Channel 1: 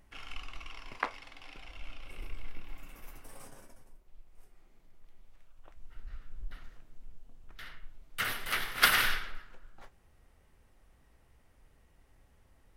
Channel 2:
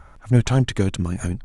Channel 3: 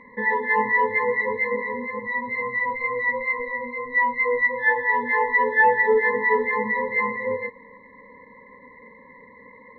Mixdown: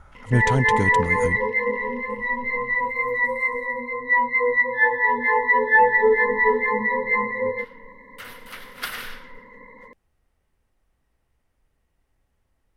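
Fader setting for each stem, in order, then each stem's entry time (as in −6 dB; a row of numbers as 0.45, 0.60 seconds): −7.0, −3.5, +1.5 decibels; 0.00, 0.00, 0.15 seconds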